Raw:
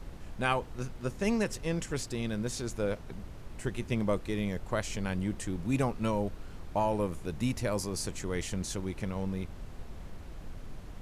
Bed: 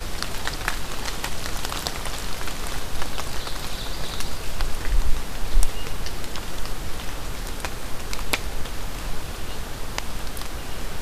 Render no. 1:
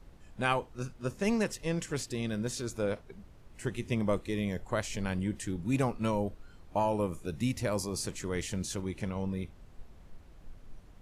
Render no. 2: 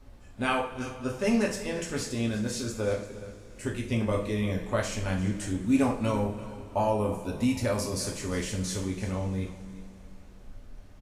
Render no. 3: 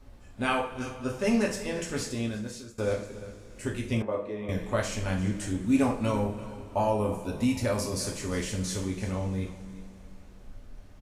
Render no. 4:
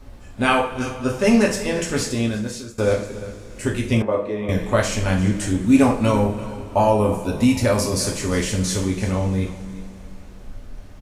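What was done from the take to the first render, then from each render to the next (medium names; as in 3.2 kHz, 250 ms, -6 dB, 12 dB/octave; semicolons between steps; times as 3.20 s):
noise print and reduce 10 dB
delay 347 ms -16 dB; two-slope reverb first 0.41 s, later 3.7 s, from -20 dB, DRR -1 dB
2.06–2.78 s: fade out, to -19 dB; 4.02–4.49 s: band-pass filter 660 Hz, Q 0.93
trim +9.5 dB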